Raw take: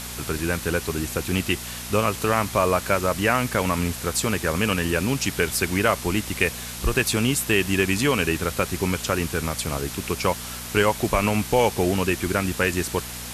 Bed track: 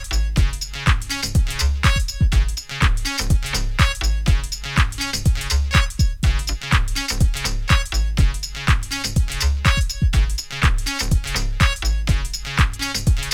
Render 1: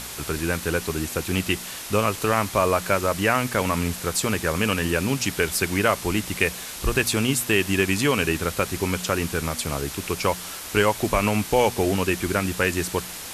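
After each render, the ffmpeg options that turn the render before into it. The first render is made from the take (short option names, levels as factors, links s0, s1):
-af "bandreject=f=60:t=h:w=4,bandreject=f=120:t=h:w=4,bandreject=f=180:t=h:w=4,bandreject=f=240:t=h:w=4"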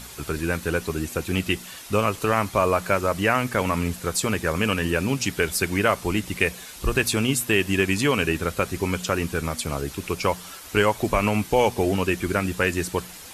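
-af "afftdn=nr=8:nf=-36"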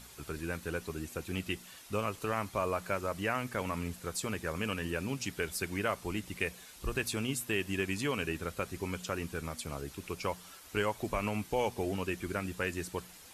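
-af "volume=0.251"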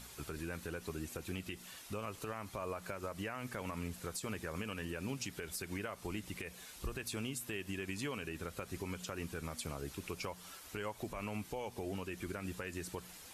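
-af "acompressor=threshold=0.0178:ratio=6,alimiter=level_in=2:limit=0.0631:level=0:latency=1:release=96,volume=0.501"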